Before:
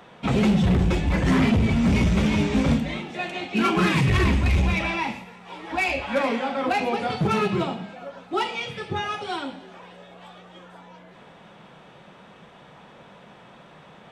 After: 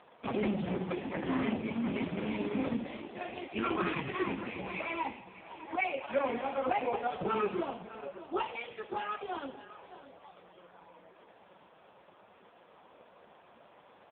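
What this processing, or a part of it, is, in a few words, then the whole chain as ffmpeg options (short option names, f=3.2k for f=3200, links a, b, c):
satellite phone: -af "highpass=320,lowpass=3.3k,equalizer=f=1.9k:w=1.1:g=-3.5,aecho=1:1:606:0.178,volume=-4dB" -ar 8000 -c:a libopencore_amrnb -b:a 4750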